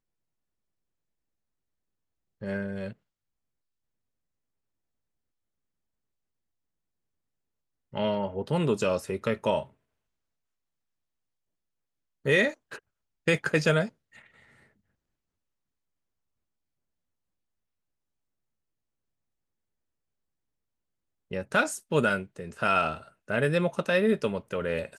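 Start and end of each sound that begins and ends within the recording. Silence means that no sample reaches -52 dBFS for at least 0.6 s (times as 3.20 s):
2.41–2.93 s
7.93–9.70 s
12.25–14.66 s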